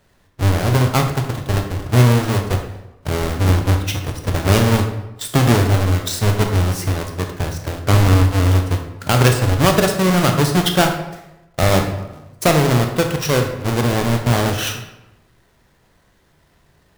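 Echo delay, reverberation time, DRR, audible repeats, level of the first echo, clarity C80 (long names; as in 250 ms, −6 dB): no echo audible, 0.95 s, 4.0 dB, no echo audible, no echo audible, 9.0 dB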